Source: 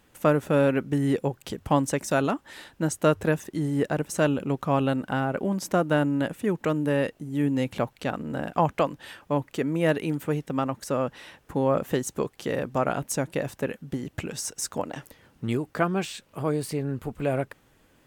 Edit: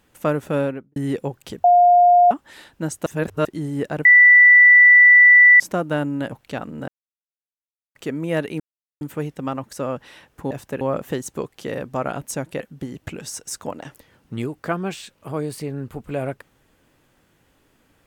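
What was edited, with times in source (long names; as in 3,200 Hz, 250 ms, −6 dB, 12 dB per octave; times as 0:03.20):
0:00.55–0:00.96: fade out and dull
0:01.64–0:02.31: beep over 708 Hz −9 dBFS
0:03.06–0:03.45: reverse
0:04.05–0:05.60: beep over 1,970 Hz −6.5 dBFS
0:06.32–0:07.84: remove
0:08.40–0:09.47: silence
0:10.12: splice in silence 0.41 s
0:13.41–0:13.71: move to 0:11.62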